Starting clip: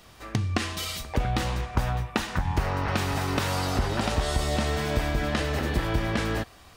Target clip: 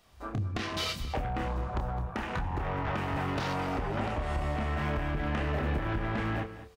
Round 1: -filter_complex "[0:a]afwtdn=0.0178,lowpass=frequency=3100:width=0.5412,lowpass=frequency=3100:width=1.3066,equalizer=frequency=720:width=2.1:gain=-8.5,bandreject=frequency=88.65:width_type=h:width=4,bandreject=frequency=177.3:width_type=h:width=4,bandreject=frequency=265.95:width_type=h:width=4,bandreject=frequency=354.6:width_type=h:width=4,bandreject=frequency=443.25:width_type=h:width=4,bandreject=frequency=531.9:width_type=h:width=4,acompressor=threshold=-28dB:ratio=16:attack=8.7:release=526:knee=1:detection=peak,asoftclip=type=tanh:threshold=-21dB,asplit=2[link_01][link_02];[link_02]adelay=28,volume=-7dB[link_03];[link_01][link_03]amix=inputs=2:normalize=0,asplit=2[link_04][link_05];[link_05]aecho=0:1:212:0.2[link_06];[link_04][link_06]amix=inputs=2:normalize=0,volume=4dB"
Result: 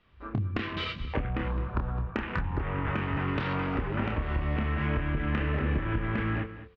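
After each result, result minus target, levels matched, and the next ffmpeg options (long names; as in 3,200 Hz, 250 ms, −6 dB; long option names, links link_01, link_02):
soft clipping: distortion −12 dB; 4,000 Hz band −4.0 dB; 1,000 Hz band −3.5 dB
-filter_complex "[0:a]afwtdn=0.0178,lowpass=frequency=3100:width=0.5412,lowpass=frequency=3100:width=1.3066,equalizer=frequency=720:width=2.1:gain=-8.5,bandreject=frequency=88.65:width_type=h:width=4,bandreject=frequency=177.3:width_type=h:width=4,bandreject=frequency=265.95:width_type=h:width=4,bandreject=frequency=354.6:width_type=h:width=4,bandreject=frequency=443.25:width_type=h:width=4,bandreject=frequency=531.9:width_type=h:width=4,acompressor=threshold=-28dB:ratio=16:attack=8.7:release=526:knee=1:detection=peak,asoftclip=type=tanh:threshold=-30dB,asplit=2[link_01][link_02];[link_02]adelay=28,volume=-7dB[link_03];[link_01][link_03]amix=inputs=2:normalize=0,asplit=2[link_04][link_05];[link_05]aecho=0:1:212:0.2[link_06];[link_04][link_06]amix=inputs=2:normalize=0,volume=4dB"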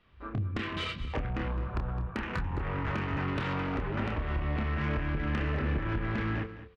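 1,000 Hz band −3.5 dB; 4,000 Hz band −3.0 dB
-filter_complex "[0:a]afwtdn=0.0178,lowpass=frequency=3100:width=0.5412,lowpass=frequency=3100:width=1.3066,equalizer=frequency=720:width=2.1:gain=2.5,bandreject=frequency=88.65:width_type=h:width=4,bandreject=frequency=177.3:width_type=h:width=4,bandreject=frequency=265.95:width_type=h:width=4,bandreject=frequency=354.6:width_type=h:width=4,bandreject=frequency=443.25:width_type=h:width=4,bandreject=frequency=531.9:width_type=h:width=4,acompressor=threshold=-28dB:ratio=16:attack=8.7:release=526:knee=1:detection=peak,asoftclip=type=tanh:threshold=-30dB,asplit=2[link_01][link_02];[link_02]adelay=28,volume=-7dB[link_03];[link_01][link_03]amix=inputs=2:normalize=0,asplit=2[link_04][link_05];[link_05]aecho=0:1:212:0.2[link_06];[link_04][link_06]amix=inputs=2:normalize=0,volume=4dB"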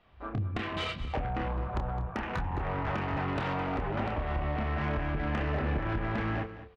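4,000 Hz band −3.5 dB
-filter_complex "[0:a]afwtdn=0.0178,equalizer=frequency=720:width=2.1:gain=2.5,bandreject=frequency=88.65:width_type=h:width=4,bandreject=frequency=177.3:width_type=h:width=4,bandreject=frequency=265.95:width_type=h:width=4,bandreject=frequency=354.6:width_type=h:width=4,bandreject=frequency=443.25:width_type=h:width=4,bandreject=frequency=531.9:width_type=h:width=4,acompressor=threshold=-28dB:ratio=16:attack=8.7:release=526:knee=1:detection=peak,asoftclip=type=tanh:threshold=-30dB,asplit=2[link_01][link_02];[link_02]adelay=28,volume=-7dB[link_03];[link_01][link_03]amix=inputs=2:normalize=0,asplit=2[link_04][link_05];[link_05]aecho=0:1:212:0.2[link_06];[link_04][link_06]amix=inputs=2:normalize=0,volume=4dB"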